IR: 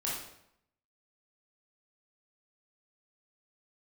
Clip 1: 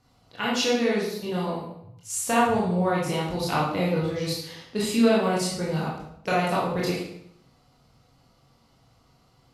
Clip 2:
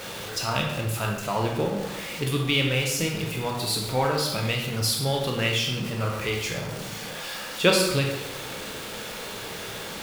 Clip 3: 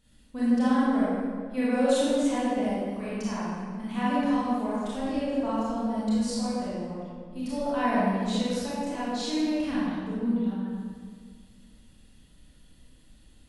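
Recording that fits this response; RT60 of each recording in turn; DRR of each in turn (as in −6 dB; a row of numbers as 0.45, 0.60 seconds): 1; 0.75, 1.0, 1.9 seconds; −6.0, 0.0, −10.0 decibels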